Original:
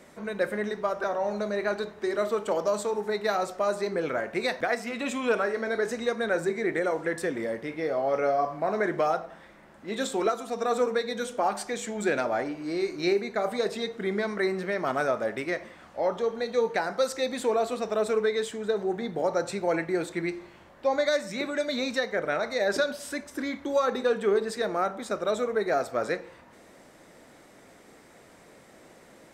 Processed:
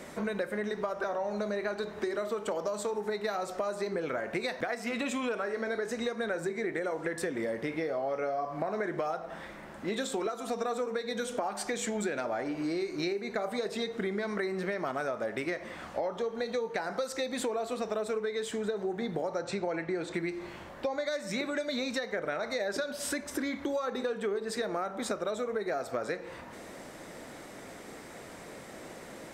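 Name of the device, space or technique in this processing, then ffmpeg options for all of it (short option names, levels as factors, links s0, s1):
serial compression, leveller first: -filter_complex "[0:a]asettb=1/sr,asplit=3[s0][s1][s2];[s0]atrim=end=19.394[s3];[s1]atrim=start=19.39:end=20.14,asetpts=PTS-STARTPTS,afade=t=in:d=0.004:c=qsin,afade=t=out:st=0.746:d=0.004:c=qsin,lowpass=6200[s4];[s2]atrim=start=20.136[s5];[s3][s4]acrossfade=d=0.004:c1=hsin:c2=qsin[s6];[s6][s5]acrossfade=d=0.004:c1=qsin:c2=hsin,acompressor=threshold=0.0178:ratio=1.5,acompressor=threshold=0.0141:ratio=6,volume=2.24"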